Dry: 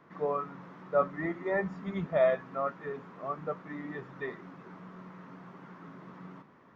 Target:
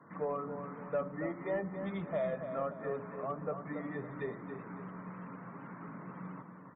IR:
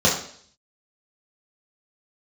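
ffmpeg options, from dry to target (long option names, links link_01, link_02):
-filter_complex "[0:a]acrossover=split=350|970[link_01][link_02][link_03];[link_01]acompressor=threshold=-43dB:ratio=4[link_04];[link_02]acompressor=threshold=-36dB:ratio=4[link_05];[link_03]acompressor=threshold=-50dB:ratio=4[link_06];[link_04][link_05][link_06]amix=inputs=3:normalize=0,bandreject=frequency=370:width=12,asplit=2[link_07][link_08];[1:a]atrim=start_sample=2205,asetrate=25137,aresample=44100[link_09];[link_08][link_09]afir=irnorm=-1:irlink=0,volume=-39dB[link_10];[link_07][link_10]amix=inputs=2:normalize=0,asoftclip=type=tanh:threshold=-25.5dB,acontrast=58,afftfilt=real='re*gte(hypot(re,im),0.00224)':imag='im*gte(hypot(re,im),0.00224)':win_size=1024:overlap=0.75,asplit=2[link_11][link_12];[link_12]adelay=279,lowpass=frequency=3000:poles=1,volume=-8dB,asplit=2[link_13][link_14];[link_14]adelay=279,lowpass=frequency=3000:poles=1,volume=0.4,asplit=2[link_15][link_16];[link_16]adelay=279,lowpass=frequency=3000:poles=1,volume=0.4,asplit=2[link_17][link_18];[link_18]adelay=279,lowpass=frequency=3000:poles=1,volume=0.4,asplit=2[link_19][link_20];[link_20]adelay=279,lowpass=frequency=3000:poles=1,volume=0.4[link_21];[link_11][link_13][link_15][link_17][link_19][link_21]amix=inputs=6:normalize=0,volume=-4.5dB"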